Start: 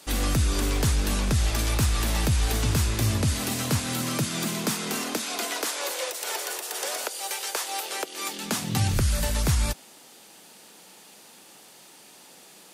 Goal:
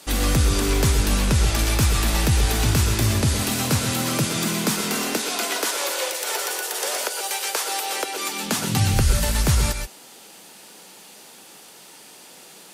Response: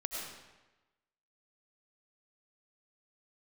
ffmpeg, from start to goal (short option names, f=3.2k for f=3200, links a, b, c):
-filter_complex "[1:a]atrim=start_sample=2205,atrim=end_sample=4410,asetrate=32193,aresample=44100[a];[0:a][a]afir=irnorm=-1:irlink=0,volume=4.5dB"